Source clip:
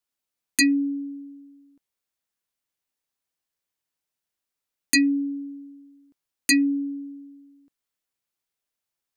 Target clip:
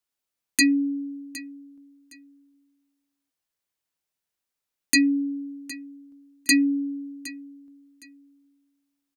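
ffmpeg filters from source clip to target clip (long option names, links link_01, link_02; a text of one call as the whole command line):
ffmpeg -i in.wav -af "aecho=1:1:763|1526:0.133|0.0307" out.wav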